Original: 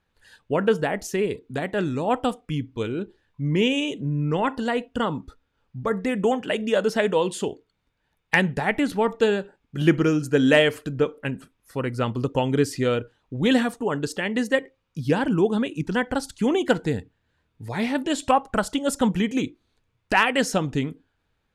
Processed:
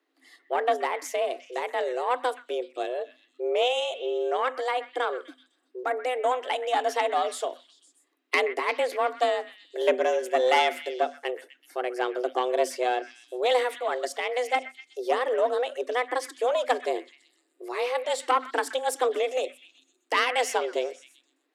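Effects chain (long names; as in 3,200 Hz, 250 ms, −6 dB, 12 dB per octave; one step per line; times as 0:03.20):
one-sided soft clipper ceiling −15.5 dBFS
echo through a band-pass that steps 126 ms, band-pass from 1,500 Hz, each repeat 0.7 octaves, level −11 dB
frequency shifter +250 Hz
level −2.5 dB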